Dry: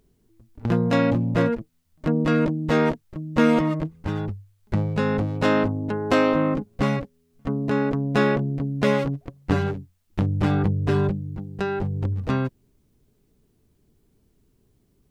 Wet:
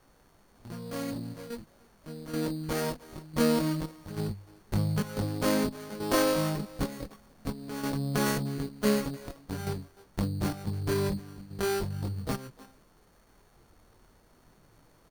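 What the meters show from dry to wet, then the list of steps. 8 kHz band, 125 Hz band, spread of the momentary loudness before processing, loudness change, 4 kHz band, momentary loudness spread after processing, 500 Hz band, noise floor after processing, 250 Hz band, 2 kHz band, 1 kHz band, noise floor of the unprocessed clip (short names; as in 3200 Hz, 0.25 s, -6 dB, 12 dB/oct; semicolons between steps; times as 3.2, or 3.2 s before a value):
n/a, -9.0 dB, 10 LU, -8.0 dB, -1.5 dB, 16 LU, -8.0 dB, -62 dBFS, -8.5 dB, -9.0 dB, -8.5 dB, -65 dBFS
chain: opening faded in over 4.52 s; resonant high shelf 2500 Hz -7.5 dB, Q 3; step gate "x..xxxxx.xx" 90 bpm -12 dB; added noise pink -58 dBFS; speakerphone echo 0.3 s, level -21 dB; in parallel at +2 dB: compressor, threshold -28 dBFS, peak gain reduction 13.5 dB; on the sum: chorus voices 4, 0.21 Hz, delay 22 ms, depth 3.4 ms; sample-and-hold 10×; running maximum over 9 samples; gain -7 dB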